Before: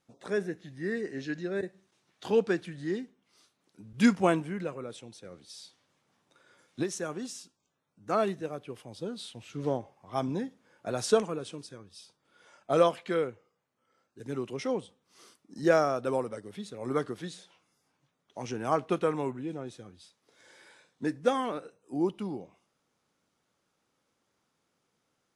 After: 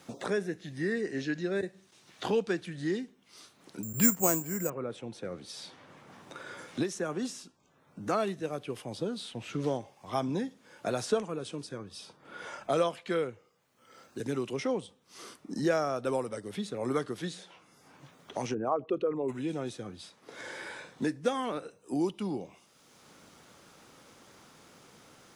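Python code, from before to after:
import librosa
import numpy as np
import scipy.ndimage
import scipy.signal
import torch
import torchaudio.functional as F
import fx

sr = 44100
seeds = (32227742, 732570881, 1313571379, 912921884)

y = fx.resample_bad(x, sr, factor=6, down='filtered', up='zero_stuff', at=(3.83, 4.7))
y = fx.band_squash(y, sr, depth_pct=40, at=(6.95, 7.36))
y = fx.envelope_sharpen(y, sr, power=2.0, at=(18.53, 19.28), fade=0.02)
y = fx.band_squash(y, sr, depth_pct=70)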